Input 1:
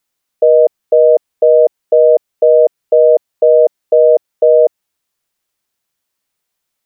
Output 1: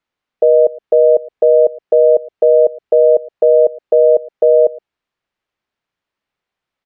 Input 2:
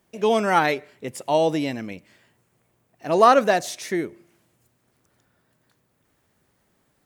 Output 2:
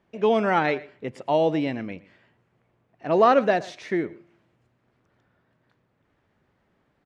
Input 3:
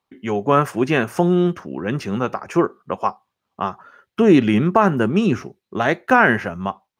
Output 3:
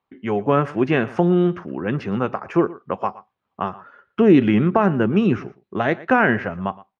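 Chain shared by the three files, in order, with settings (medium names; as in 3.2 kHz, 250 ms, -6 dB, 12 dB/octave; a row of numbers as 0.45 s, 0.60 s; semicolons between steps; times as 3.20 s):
low-pass 2.8 kHz 12 dB/octave; on a send: delay 116 ms -20.5 dB; on the sum: dynamic bell 1.1 kHz, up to -5 dB, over -23 dBFS, Q 1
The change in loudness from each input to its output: -1.5 LU, -2.0 LU, -1.0 LU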